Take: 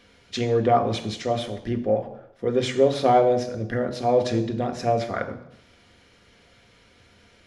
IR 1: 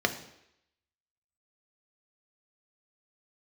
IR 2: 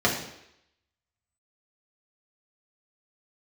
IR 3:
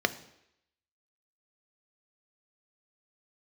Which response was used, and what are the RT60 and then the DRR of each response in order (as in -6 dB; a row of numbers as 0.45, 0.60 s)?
1; 0.80, 0.80, 0.80 s; 5.5, -3.5, 10.5 dB